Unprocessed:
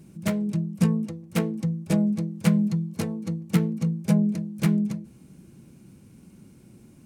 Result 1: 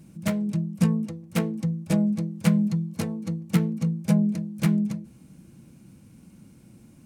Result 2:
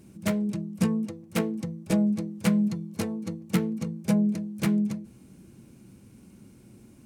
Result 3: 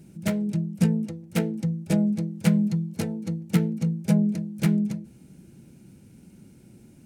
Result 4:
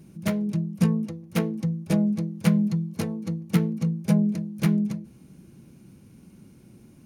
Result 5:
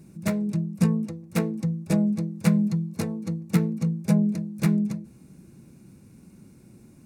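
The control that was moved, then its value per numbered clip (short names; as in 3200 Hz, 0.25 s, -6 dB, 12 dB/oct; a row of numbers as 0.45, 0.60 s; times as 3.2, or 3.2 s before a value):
notch, frequency: 390, 160, 1100, 7800, 3100 Hz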